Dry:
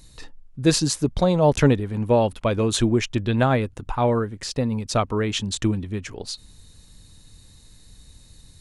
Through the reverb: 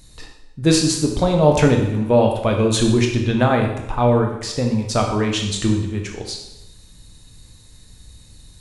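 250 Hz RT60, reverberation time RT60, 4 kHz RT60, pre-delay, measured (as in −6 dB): 0.90 s, 0.85 s, 0.80 s, 6 ms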